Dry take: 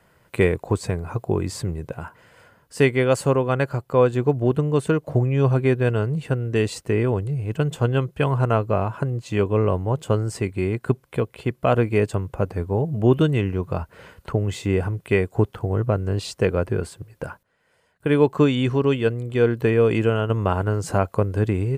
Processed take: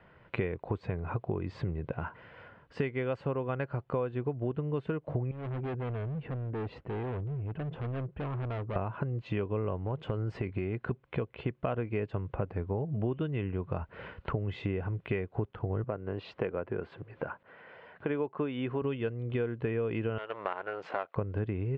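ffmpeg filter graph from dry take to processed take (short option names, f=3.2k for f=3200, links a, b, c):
-filter_complex "[0:a]asettb=1/sr,asplit=3[a][b][c];[a]atrim=end=5.314[d];[b]atrim=start=5.31:end=8.76,asetpts=PTS-STARTPTS,afade=t=in:d=0.004:c=qsin,afade=t=out:st=3.446:d=0.004:c=qsin,lowpass=f=1.1k:p=1,asoftclip=type=hard:threshold=-25dB,acompressor=threshold=-38dB:ratio=2.5:attack=3.2:release=140:knee=1:detection=peak[e];[c]atrim=start=8.756[f];[d][e]acrossfade=d=0.004:c1=hsin:c2=qsin[g];[g][f]acrossfade=d=0.004:c1=qsin:c2=hsin,asettb=1/sr,asplit=3[h][i][j];[h]atrim=end=9.764[k];[i]atrim=start=9.76:end=10.91,asetpts=PTS-STARTPTS,afade=t=in:d=0.004:c=qsin,afade=t=out:st=1.146:d=0.004:c=qsin,acompressor=threshold=-22dB:ratio=4:attack=3.2:release=140:knee=1:detection=peak,asoftclip=type=hard:threshold=-17.5dB[l];[j]atrim=start=10.906[m];[k][l]acrossfade=d=0.004:c1=hsin:c2=qsin[n];[n][m]acrossfade=d=0.004:c1=qsin:c2=hsin,asettb=1/sr,asplit=3[o][p][q];[o]atrim=end=15.844[r];[p]atrim=start=15.84:end=18.82,asetpts=PTS-STARTPTS,afade=t=in:d=0.004:c=qsin,afade=t=out:st=2.976:d=0.004:c=qsin,highpass=f=320:p=1,aemphasis=mode=reproduction:type=75kf,acompressor=mode=upward:threshold=-37dB:ratio=2.5:attack=3.2:release=140:knee=2.83:detection=peak[s];[q]atrim=start=18.816[t];[r][s]acrossfade=d=0.004:c1=hsin:c2=qsin[u];[u][t]acrossfade=d=0.004:c1=qsin:c2=hsin,asettb=1/sr,asplit=3[v][w][x];[v]atrim=end=20.184[y];[w]atrim=start=20.18:end=21.16,asetpts=PTS-STARTPTS,afade=t=in:d=0.004:c=qsin,afade=t=out:st=0.976:d=0.004:c=qsin,aeval=exprs='if(lt(val(0),0),0.251*val(0),val(0))':c=same,highpass=580,lowpass=7.2k,bandreject=f=1.6k:w=26[z];[x]atrim=start=21.156[aa];[y][z]acrossfade=d=0.004:c1=hsin:c2=qsin[ab];[ab][aa]acrossfade=d=0.004:c1=qsin:c2=hsin,lowpass=f=3.1k:w=0.5412,lowpass=f=3.1k:w=1.3066,acompressor=threshold=-30dB:ratio=6"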